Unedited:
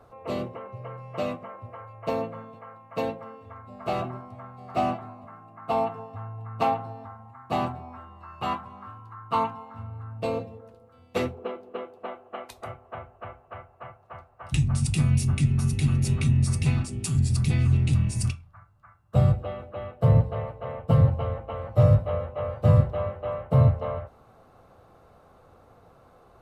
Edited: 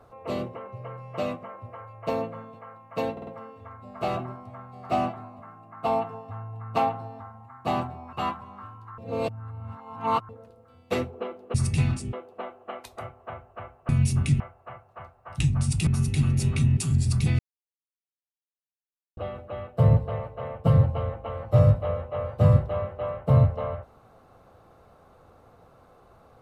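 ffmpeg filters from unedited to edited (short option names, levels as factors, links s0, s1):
-filter_complex "[0:a]asplit=15[s0][s1][s2][s3][s4][s5][s6][s7][s8][s9][s10][s11][s12][s13][s14];[s0]atrim=end=3.172[s15];[s1]atrim=start=3.118:end=3.172[s16];[s2]atrim=start=3.118:end=3.172[s17];[s3]atrim=start=3.118:end=7.982[s18];[s4]atrim=start=8.368:end=9.222[s19];[s5]atrim=start=9.218:end=10.532,asetpts=PTS-STARTPTS,areverse[s20];[s6]atrim=start=10.528:end=11.782[s21];[s7]atrim=start=16.418:end=17.012[s22];[s8]atrim=start=11.778:end=13.542[s23];[s9]atrim=start=15.008:end=15.522[s24];[s10]atrim=start=13.538:end=15.012[s25];[s11]atrim=start=15.518:end=16.422[s26];[s12]atrim=start=17.008:end=17.63,asetpts=PTS-STARTPTS,afade=t=out:st=0.618:d=0.004:c=hsin[s27];[s13]atrim=start=17.63:end=19.41,asetpts=PTS-STARTPTS,volume=0[s28];[s14]atrim=start=19.41,asetpts=PTS-STARTPTS,afade=t=in:d=0.004:c=hsin[s29];[s15][s16]acrossfade=d=0.004:c1=hsin:c2=hsin[s30];[s30][s17]acrossfade=d=0.004:c1=hsin:c2=hsin[s31];[s31][s18]acrossfade=d=0.004:c1=hsin:c2=hsin[s32];[s32][s19]acrossfade=d=0.004:c1=hsin:c2=hsin[s33];[s33][s20]acrossfade=d=0.004:c1=hsin:c2=hsin[s34];[s34][s21]acrossfade=d=0.004:c1=hsin:c2=hsin[s35];[s35][s22]acrossfade=d=0.004:c1=hsin:c2=hsin[s36];[s36][s23]acrossfade=d=0.004:c1=hsin:c2=hsin[s37];[s37][s24]acrossfade=d=0.004:c1=hsin:c2=hsin[s38];[s38][s25]acrossfade=d=0.004:c1=hsin:c2=hsin[s39];[s39][s26]acrossfade=d=0.004:c1=hsin:c2=hsin[s40];[s27][s28][s29]concat=n=3:v=0:a=1[s41];[s40][s41]acrossfade=d=0.004:c1=hsin:c2=hsin"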